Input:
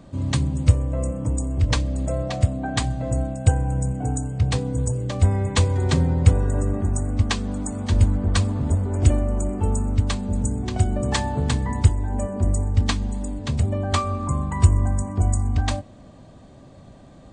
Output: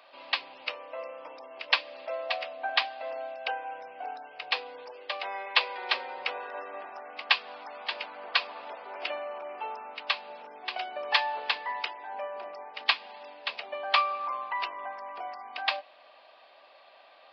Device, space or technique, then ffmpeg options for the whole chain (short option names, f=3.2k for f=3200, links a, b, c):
musical greeting card: -filter_complex "[0:a]aresample=11025,aresample=44100,highpass=f=670:w=0.5412,highpass=f=670:w=1.3066,equalizer=f=2.6k:t=o:w=0.51:g=9.5,asettb=1/sr,asplit=3[a][b][c];[a]atrim=end=4.894[d];[b]atrim=start=4.89:end=6.18,asetpts=PTS-STARTPTS,afade=t=in:d=0.004:c=qsin,afade=t=out:st=1.286:d=0.004:c=qsin,highpass=210[e];[c]atrim=start=6.176[f];[d][e]acrossfade=d=0.004:c1=hsin:c2=qsin[g];[g][f]acrossfade=d=0.004:c1=qsin:c2=hsin"